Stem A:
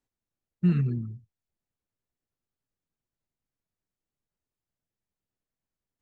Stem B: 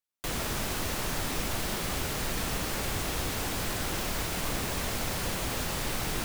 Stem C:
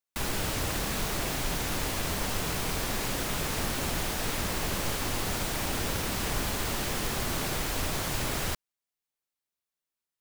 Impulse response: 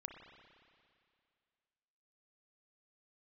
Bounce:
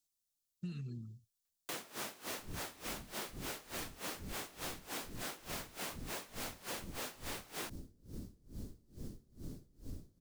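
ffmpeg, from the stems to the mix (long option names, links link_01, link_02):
-filter_complex "[0:a]aexciter=amount=8.6:drive=5.1:freq=3100,volume=-12.5dB[link_01];[1:a]highpass=270,aeval=exprs='val(0)*pow(10,-25*(0.5-0.5*cos(2*PI*3.4*n/s))/20)':channel_layout=same,adelay=1450,volume=1.5dB[link_02];[2:a]firequalizer=gain_entry='entry(270,0);entry(780,-24);entry(2500,-28);entry(4600,-16)':delay=0.05:min_phase=1,aeval=exprs='val(0)*pow(10,-29*(0.5-0.5*cos(2*PI*2.3*n/s))/20)':channel_layout=same,adelay=2100,volume=-6.5dB[link_03];[link_01][link_02][link_03]amix=inputs=3:normalize=0,acompressor=threshold=-40dB:ratio=6"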